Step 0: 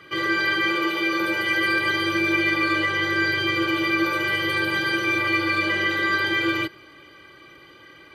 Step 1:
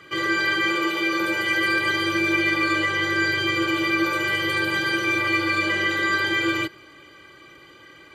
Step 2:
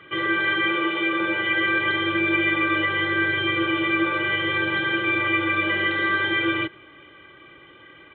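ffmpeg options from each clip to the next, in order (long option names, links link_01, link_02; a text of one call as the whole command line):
ffmpeg -i in.wav -af "equalizer=frequency=7300:width_type=o:width=0.24:gain=13.5" out.wav
ffmpeg -i in.wav -af "aresample=8000,aresample=44100" out.wav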